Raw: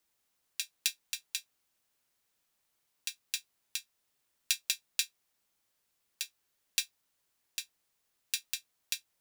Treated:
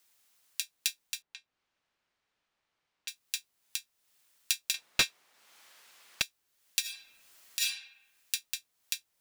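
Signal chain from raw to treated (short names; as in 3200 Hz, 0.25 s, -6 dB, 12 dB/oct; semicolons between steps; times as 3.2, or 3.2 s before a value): 1.22–3.08 tape spacing loss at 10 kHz 29 dB; 4.74–6.22 overdrive pedal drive 27 dB, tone 1800 Hz, clips at -5 dBFS; 6.81–7.6 reverb throw, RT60 0.88 s, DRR -12 dB; mismatched tape noise reduction encoder only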